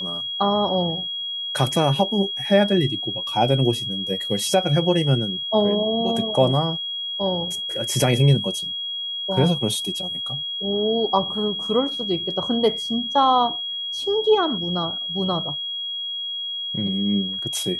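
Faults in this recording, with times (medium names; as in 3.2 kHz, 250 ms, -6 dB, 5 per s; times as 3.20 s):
whine 3.3 kHz -26 dBFS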